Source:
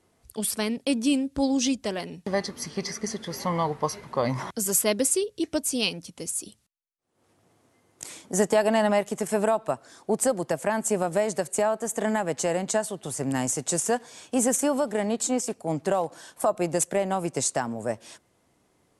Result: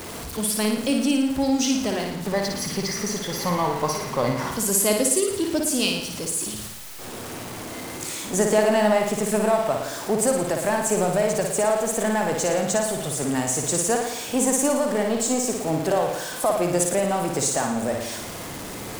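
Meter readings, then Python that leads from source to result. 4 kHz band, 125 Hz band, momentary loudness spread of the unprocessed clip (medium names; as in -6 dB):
+5.0 dB, +4.5 dB, 9 LU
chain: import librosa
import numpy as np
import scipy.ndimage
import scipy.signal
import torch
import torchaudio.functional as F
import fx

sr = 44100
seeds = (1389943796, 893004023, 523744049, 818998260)

y = x + 0.5 * 10.0 ** (-30.5 / 20.0) * np.sign(x)
y = fx.room_flutter(y, sr, wall_m=9.7, rt60_s=0.77)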